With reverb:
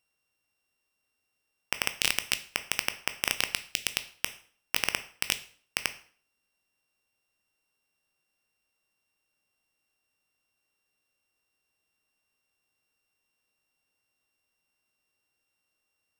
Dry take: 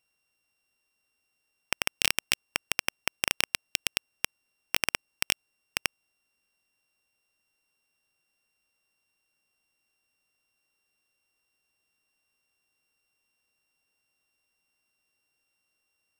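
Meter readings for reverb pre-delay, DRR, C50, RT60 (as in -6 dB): 6 ms, 10.0 dB, 15.0 dB, 0.50 s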